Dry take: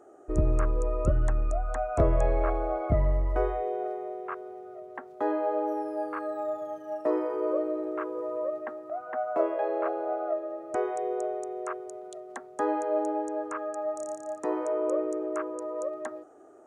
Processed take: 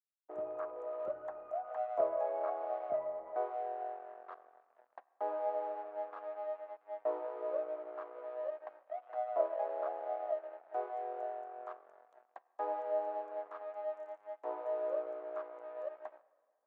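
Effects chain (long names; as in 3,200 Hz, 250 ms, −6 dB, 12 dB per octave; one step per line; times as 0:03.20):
dead-zone distortion −38.5 dBFS
four-pole ladder band-pass 780 Hz, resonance 50%
convolution reverb RT60 2.1 s, pre-delay 6 ms, DRR 17 dB
level +2.5 dB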